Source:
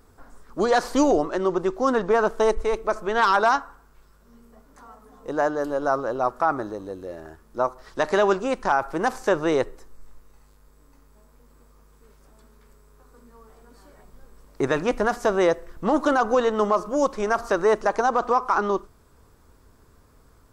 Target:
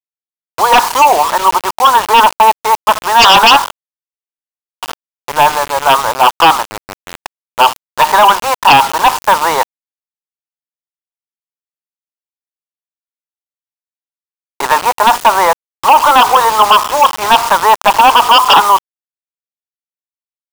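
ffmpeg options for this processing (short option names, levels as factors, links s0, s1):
-af "highpass=f=920:t=q:w=7.3,acrusher=bits=4:mix=0:aa=0.000001,aeval=exprs='1.5*sin(PI/2*4.47*val(0)/1.5)':c=same,volume=0.562"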